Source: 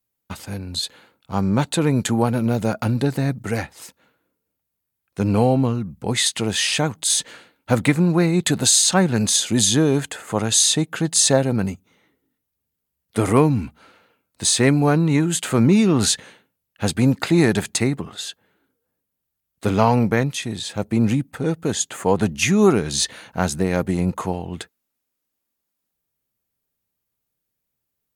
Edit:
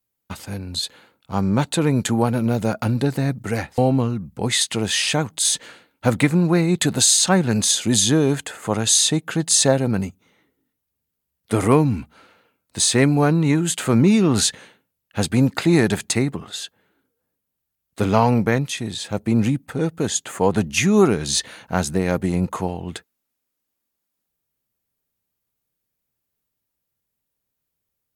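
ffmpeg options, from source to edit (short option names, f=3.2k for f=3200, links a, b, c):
-filter_complex "[0:a]asplit=2[a][b];[a]atrim=end=3.782[c];[b]atrim=start=5.428[d];[c][d]acrossfade=d=0.004:c1=hsin:c2=hsin"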